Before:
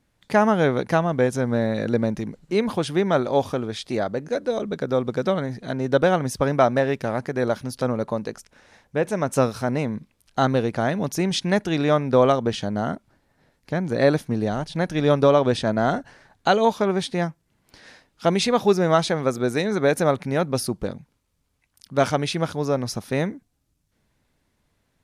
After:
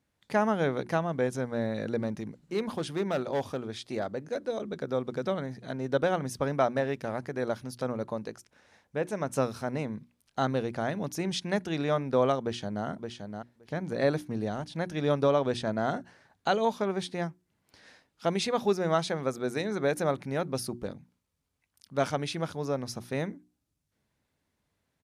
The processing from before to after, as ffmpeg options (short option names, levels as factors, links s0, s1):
-filter_complex "[0:a]asettb=1/sr,asplit=3[s0][s1][s2];[s0]atrim=end=1.994[s3];[s1]atrim=start=1.99:end=4.46,asetpts=PTS-STARTPTS,afade=t=in:d=0.004:c=qsin,afade=t=out:st=2.466:d=0.004:c=qsin,asoftclip=type=hard:threshold=0.168[s4];[s2]atrim=start=4.456[s5];[s3][s4]acrossfade=d=0.004:c1=hsin:c2=qsin[s6];[s6][s5]acrossfade=d=0.004:c1=qsin:c2=hsin,asplit=2[s7][s8];[s8]afade=t=in:st=12.41:d=0.01,afade=t=out:st=12.85:d=0.01,aecho=0:1:570|1140:0.501187|0.0501187[s9];[s7][s9]amix=inputs=2:normalize=0,highpass=55,bandreject=f=60:t=h:w=6,bandreject=f=120:t=h:w=6,bandreject=f=180:t=h:w=6,bandreject=f=240:t=h:w=6,bandreject=f=300:t=h:w=6,bandreject=f=360:t=h:w=6,volume=0.398"